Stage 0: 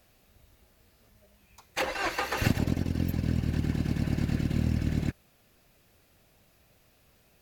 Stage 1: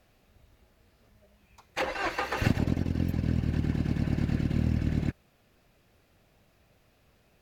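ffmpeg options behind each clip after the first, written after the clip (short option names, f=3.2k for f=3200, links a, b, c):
-af "aemphasis=mode=reproduction:type=cd"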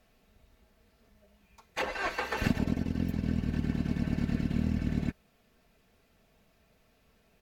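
-af "aecho=1:1:4.5:0.45,volume=-2.5dB"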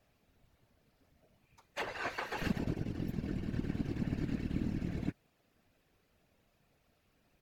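-af "afftfilt=real='hypot(re,im)*cos(2*PI*random(0))':imag='hypot(re,im)*sin(2*PI*random(1))':win_size=512:overlap=0.75"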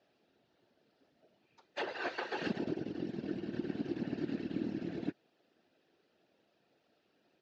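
-af "highpass=260,equalizer=f=350:t=q:w=4:g=6,equalizer=f=1.1k:t=q:w=4:g=-7,equalizer=f=2.2k:t=q:w=4:g=-7,lowpass=f=5.1k:w=0.5412,lowpass=f=5.1k:w=1.3066,volume=2dB"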